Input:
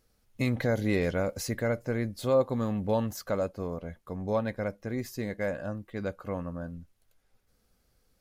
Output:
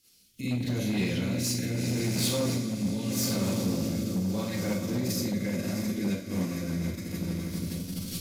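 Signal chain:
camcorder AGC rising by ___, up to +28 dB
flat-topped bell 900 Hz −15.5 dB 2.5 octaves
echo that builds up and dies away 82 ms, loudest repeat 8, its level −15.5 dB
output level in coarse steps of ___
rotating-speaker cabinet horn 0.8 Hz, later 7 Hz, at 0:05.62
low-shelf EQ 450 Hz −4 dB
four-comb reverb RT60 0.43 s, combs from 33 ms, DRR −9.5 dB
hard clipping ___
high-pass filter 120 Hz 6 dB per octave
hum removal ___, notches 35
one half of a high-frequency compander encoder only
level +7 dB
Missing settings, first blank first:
16 dB per second, 19 dB, −28.5 dBFS, 215.5 Hz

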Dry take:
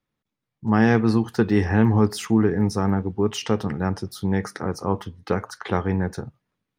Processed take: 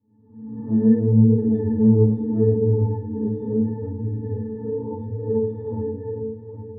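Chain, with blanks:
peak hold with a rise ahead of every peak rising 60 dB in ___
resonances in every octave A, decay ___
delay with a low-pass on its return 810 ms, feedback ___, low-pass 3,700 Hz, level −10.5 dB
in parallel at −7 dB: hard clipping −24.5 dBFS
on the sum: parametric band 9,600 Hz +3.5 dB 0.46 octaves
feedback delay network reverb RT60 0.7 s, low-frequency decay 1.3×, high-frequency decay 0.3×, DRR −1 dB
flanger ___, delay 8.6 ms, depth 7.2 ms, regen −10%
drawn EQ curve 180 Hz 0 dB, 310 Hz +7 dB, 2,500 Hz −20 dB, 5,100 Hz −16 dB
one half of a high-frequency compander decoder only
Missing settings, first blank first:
1.00 s, 0.31 s, 34%, 0.74 Hz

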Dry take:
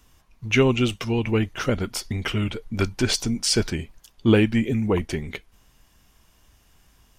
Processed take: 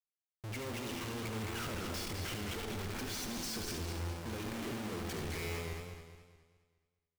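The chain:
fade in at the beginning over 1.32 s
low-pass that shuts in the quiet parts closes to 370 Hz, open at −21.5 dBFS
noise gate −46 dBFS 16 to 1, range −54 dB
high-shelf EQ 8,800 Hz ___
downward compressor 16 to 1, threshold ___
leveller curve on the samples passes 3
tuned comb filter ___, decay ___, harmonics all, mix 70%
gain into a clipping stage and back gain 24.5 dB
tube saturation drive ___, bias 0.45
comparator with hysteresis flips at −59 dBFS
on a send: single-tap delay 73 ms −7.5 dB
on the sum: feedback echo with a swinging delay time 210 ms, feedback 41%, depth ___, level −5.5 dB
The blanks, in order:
−5.5 dB, −21 dBFS, 85 Hz, 0.9 s, 38 dB, 97 cents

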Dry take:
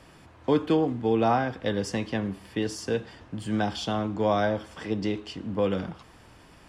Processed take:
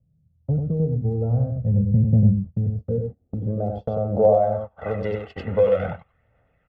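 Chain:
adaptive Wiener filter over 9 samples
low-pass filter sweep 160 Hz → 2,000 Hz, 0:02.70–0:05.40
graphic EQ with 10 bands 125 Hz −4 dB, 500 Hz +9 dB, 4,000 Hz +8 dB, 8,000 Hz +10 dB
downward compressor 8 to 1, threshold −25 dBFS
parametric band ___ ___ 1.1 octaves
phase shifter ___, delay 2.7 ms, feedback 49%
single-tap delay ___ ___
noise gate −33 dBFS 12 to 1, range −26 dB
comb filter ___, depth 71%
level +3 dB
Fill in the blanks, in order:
110 Hz, +7 dB, 0.47 Hz, 95 ms, −4.5 dB, 1.5 ms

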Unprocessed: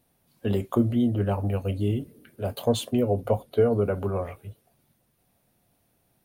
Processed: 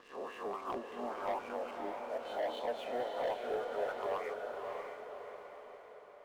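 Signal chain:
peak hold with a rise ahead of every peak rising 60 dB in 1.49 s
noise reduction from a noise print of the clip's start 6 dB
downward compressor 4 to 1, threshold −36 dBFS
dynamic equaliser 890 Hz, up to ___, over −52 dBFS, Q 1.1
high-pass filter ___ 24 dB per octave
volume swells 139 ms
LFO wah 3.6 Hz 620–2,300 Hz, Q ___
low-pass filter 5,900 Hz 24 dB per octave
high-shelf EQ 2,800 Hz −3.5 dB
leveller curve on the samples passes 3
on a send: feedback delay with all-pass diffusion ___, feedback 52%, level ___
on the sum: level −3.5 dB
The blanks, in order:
+5 dB, 230 Hz, 2.6, 593 ms, −4 dB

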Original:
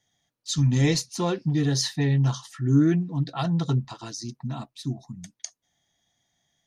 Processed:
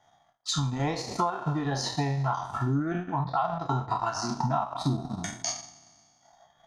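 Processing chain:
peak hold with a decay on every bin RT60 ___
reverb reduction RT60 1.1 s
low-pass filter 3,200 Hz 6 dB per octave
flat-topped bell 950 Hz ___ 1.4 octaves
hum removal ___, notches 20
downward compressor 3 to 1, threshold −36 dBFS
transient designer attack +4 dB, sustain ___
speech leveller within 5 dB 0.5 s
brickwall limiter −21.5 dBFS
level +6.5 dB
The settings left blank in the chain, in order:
1.61 s, +15.5 dB, 237.8 Hz, −12 dB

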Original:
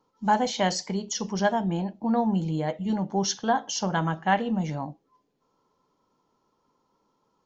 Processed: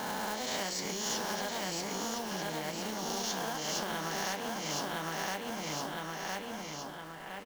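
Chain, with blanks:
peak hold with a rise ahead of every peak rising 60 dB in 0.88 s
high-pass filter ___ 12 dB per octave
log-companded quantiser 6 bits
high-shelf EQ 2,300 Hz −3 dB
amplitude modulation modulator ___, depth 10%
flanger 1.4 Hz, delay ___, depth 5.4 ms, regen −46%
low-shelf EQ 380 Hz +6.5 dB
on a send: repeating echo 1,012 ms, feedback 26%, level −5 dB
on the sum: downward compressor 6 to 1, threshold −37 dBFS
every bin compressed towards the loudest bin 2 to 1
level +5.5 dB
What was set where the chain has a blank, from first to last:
270 Hz, 29 Hz, 9 ms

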